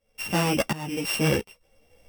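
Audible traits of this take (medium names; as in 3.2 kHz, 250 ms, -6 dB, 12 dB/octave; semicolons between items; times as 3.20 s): a buzz of ramps at a fixed pitch in blocks of 16 samples; tremolo saw up 1.4 Hz, depth 90%; a shimmering, thickened sound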